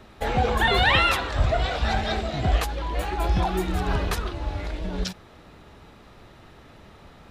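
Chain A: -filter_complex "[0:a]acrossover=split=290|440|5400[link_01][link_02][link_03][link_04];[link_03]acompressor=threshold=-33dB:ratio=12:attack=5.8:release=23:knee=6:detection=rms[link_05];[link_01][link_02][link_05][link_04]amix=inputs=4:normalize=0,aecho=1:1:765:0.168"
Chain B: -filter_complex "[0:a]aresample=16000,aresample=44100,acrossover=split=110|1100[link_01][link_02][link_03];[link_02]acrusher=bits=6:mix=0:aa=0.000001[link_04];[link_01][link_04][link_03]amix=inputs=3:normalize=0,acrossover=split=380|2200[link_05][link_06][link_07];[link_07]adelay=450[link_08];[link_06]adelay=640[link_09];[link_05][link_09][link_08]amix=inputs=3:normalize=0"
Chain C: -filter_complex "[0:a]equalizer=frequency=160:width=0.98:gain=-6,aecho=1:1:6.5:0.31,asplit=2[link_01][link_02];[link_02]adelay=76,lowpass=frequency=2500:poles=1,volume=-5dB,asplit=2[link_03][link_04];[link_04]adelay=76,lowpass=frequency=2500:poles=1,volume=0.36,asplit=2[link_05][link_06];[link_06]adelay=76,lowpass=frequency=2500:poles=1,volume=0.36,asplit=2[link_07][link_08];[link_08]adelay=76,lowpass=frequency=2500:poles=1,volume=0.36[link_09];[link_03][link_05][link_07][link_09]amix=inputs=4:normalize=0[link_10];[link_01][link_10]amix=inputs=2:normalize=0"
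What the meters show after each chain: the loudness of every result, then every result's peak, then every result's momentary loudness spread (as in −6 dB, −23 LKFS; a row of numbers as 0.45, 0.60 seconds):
−27.5, −26.0, −24.0 LKFS; −10.5, −7.5, −5.5 dBFS; 18, 15, 14 LU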